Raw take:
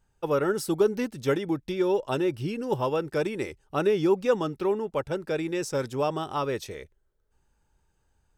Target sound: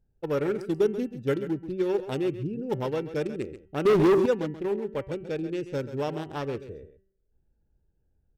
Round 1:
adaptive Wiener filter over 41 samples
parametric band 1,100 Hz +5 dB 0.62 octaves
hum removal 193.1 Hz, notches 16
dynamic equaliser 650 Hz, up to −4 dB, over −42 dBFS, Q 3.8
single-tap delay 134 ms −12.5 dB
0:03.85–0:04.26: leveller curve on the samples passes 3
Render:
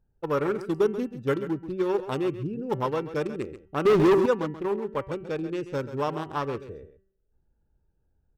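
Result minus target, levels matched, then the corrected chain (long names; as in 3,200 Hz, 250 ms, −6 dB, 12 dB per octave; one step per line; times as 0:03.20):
1,000 Hz band +4.0 dB
adaptive Wiener filter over 41 samples
parametric band 1,100 Hz −6 dB 0.62 octaves
hum removal 193.1 Hz, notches 16
dynamic equaliser 650 Hz, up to −4 dB, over −42 dBFS, Q 3.8
single-tap delay 134 ms −12.5 dB
0:03.85–0:04.26: leveller curve on the samples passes 3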